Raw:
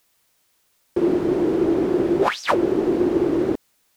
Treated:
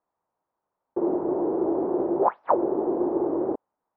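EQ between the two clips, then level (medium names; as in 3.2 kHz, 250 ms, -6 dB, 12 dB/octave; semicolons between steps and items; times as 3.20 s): bass shelf 130 Hz -9.5 dB; dynamic bell 590 Hz, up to +6 dB, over -34 dBFS, Q 0.83; four-pole ladder low-pass 1.1 kHz, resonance 45%; 0.0 dB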